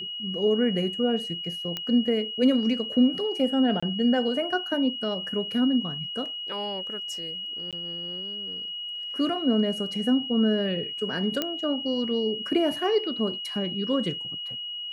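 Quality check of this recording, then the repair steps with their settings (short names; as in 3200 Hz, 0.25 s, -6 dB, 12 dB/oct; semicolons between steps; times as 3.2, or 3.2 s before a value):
tone 2900 Hz -32 dBFS
1.77 pop -16 dBFS
3.8–3.83 gap 25 ms
7.71–7.73 gap 17 ms
11.42 pop -11 dBFS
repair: de-click; notch 2900 Hz, Q 30; interpolate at 3.8, 25 ms; interpolate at 7.71, 17 ms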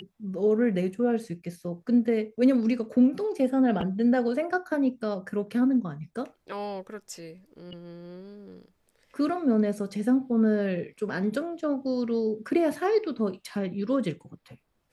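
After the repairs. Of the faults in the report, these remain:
none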